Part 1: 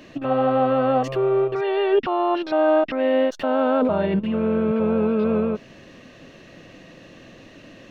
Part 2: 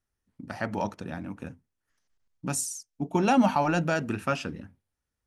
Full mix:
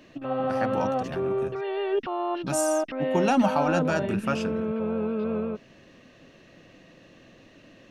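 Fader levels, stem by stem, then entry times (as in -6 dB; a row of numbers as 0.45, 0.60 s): -7.5, -0.5 dB; 0.00, 0.00 s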